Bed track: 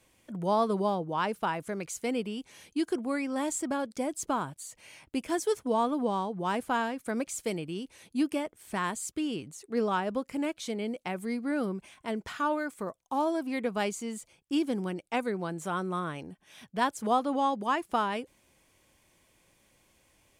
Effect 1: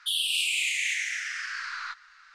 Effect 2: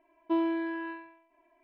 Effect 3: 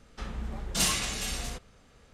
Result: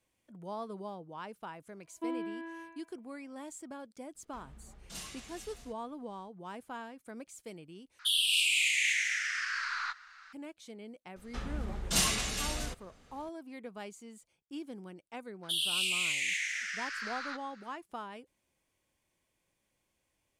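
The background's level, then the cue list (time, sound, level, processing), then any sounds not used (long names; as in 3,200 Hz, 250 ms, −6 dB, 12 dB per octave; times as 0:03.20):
bed track −14 dB
0:01.72: mix in 2 −8.5 dB
0:04.15: mix in 3 −18 dB
0:07.99: overwrite with 1 −1 dB + parametric band 550 Hz +12.5 dB 0.91 octaves
0:11.16: mix in 3 −1.5 dB
0:15.43: mix in 1 −4.5 dB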